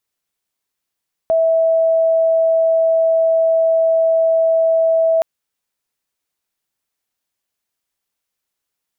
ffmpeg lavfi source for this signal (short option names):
-f lavfi -i "sine=f=653:d=3.92:r=44100,volume=7.06dB"